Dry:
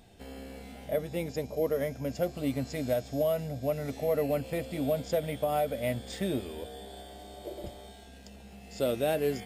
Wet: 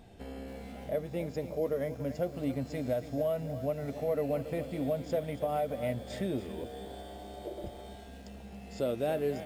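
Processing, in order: high shelf 2400 Hz -8.5 dB; in parallel at +2 dB: compressor, threshold -43 dBFS, peak gain reduction 17.5 dB; on the sum: lo-fi delay 0.28 s, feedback 35%, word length 8-bit, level -12 dB; gain -4 dB

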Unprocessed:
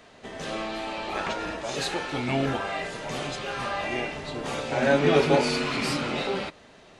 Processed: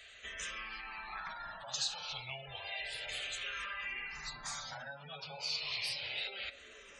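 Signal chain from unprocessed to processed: 0.81–1.74 median filter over 9 samples; high shelf 3000 Hz +8.5 dB; spectral gate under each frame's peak -20 dB strong; on a send: band-limited delay 0.534 s, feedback 75%, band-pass 440 Hz, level -19.5 dB; on the sum: compressor 6:1, threshold -33 dBFS, peak gain reduction 16.5 dB; passive tone stack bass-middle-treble 10-0-10; de-hum 177 Hz, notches 30; endless phaser -0.31 Hz; gain +4 dB

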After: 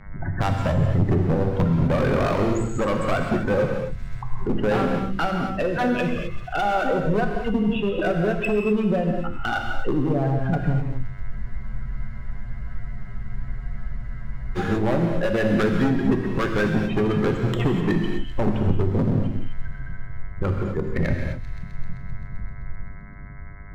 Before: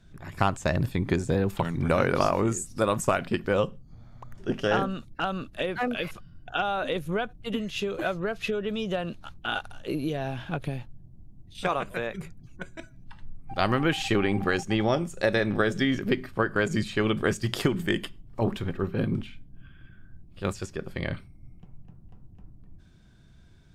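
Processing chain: median filter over 9 samples; spectral gate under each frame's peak -15 dB strong; bell 5200 Hz -13 dB 0.88 oct; in parallel at +1 dB: compressor, threshold -34 dBFS, peak gain reduction 14.5 dB; on the sum: buzz 100 Hz, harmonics 22, -61 dBFS -1 dB/oct; harmonic tremolo 9.9 Hz, depth 50%, crossover 630 Hz; overloaded stage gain 25.5 dB; low shelf 110 Hz +7 dB; on a send: thin delay 0.13 s, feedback 76%, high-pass 3000 Hz, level -17 dB; on the sum: non-linear reverb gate 0.28 s flat, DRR 2 dB; spectral freeze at 11.34, 3.24 s; mismatched tape noise reduction encoder only; gain +5.5 dB

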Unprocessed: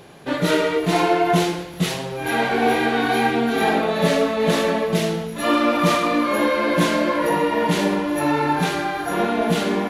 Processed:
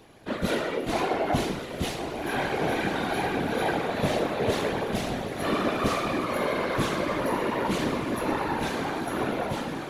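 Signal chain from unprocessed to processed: ending faded out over 0.55 s; diffused feedback echo 1.128 s, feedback 58%, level -8 dB; whisperiser; gain -8.5 dB

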